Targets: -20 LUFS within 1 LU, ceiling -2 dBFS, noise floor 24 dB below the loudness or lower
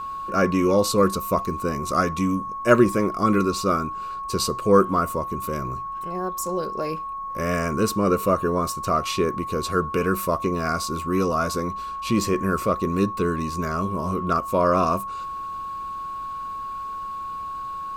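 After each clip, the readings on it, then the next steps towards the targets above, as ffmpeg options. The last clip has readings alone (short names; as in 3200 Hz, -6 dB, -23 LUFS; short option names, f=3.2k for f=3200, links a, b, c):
steady tone 1100 Hz; tone level -29 dBFS; loudness -24.0 LUFS; peak -3.5 dBFS; loudness target -20.0 LUFS
-> -af "bandreject=f=1.1k:w=30"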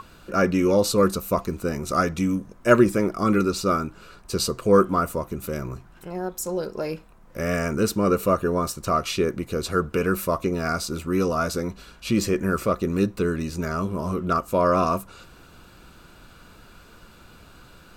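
steady tone none; loudness -24.0 LUFS; peak -3.0 dBFS; loudness target -20.0 LUFS
-> -af "volume=4dB,alimiter=limit=-2dB:level=0:latency=1"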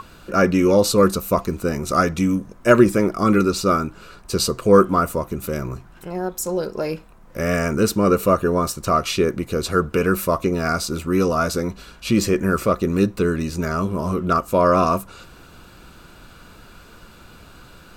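loudness -20.0 LUFS; peak -2.0 dBFS; noise floor -46 dBFS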